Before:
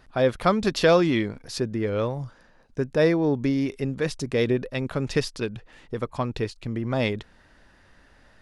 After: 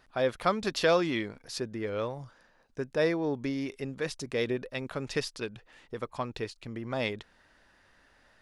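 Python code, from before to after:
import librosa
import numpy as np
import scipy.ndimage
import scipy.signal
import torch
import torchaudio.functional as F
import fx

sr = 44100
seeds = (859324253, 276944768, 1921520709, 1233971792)

y = fx.low_shelf(x, sr, hz=320.0, db=-8.5)
y = F.gain(torch.from_numpy(y), -4.0).numpy()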